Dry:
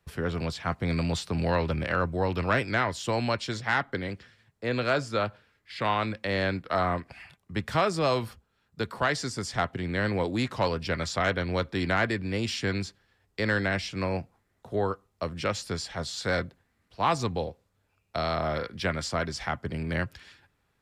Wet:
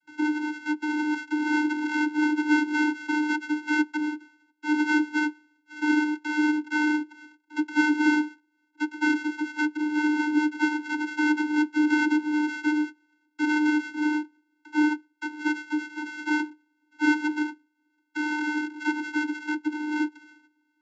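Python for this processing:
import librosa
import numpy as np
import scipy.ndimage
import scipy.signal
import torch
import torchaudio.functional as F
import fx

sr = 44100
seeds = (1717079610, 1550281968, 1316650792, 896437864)

y = np.r_[np.sort(x[:len(x) // 64 * 64].reshape(-1, 64), axis=1).ravel(), x[len(x) // 64 * 64:]]
y = fx.graphic_eq_10(y, sr, hz=(250, 500, 1000), db=(4, -6, 4))
y = fx.vocoder(y, sr, bands=32, carrier='square', carrier_hz=302.0)
y = y * librosa.db_to_amplitude(4.0)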